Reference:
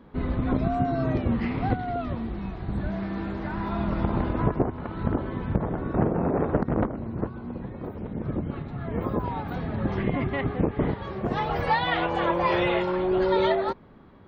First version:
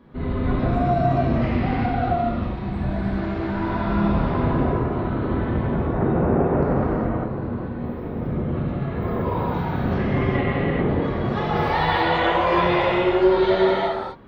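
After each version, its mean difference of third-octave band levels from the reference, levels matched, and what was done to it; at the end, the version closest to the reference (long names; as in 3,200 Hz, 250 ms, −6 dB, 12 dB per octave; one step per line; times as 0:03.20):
3.5 dB: in parallel at +1 dB: brickwall limiter −17.5 dBFS, peak gain reduction 7.5 dB
on the sum: reverb whose tail is shaped and stops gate 440 ms flat, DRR −7.5 dB
level −8.5 dB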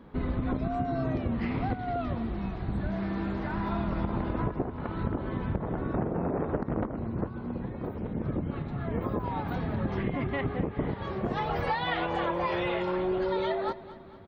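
2.0 dB: downward compressor, threshold −26 dBFS, peak gain reduction 9.5 dB
on a send: repeating echo 224 ms, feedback 53%, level −17 dB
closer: second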